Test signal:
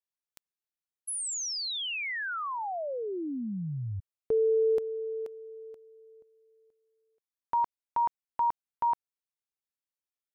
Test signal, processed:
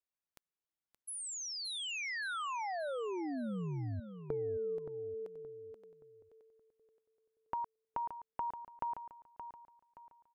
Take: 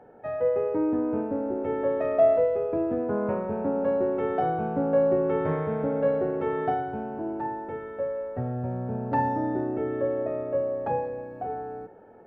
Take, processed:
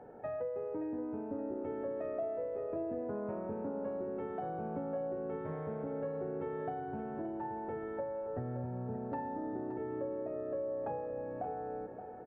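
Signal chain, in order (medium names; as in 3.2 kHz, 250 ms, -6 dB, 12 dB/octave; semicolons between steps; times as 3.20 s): treble shelf 2.3 kHz -9 dB; compression 6:1, threshold -37 dBFS; feedback delay 573 ms, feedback 35%, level -10 dB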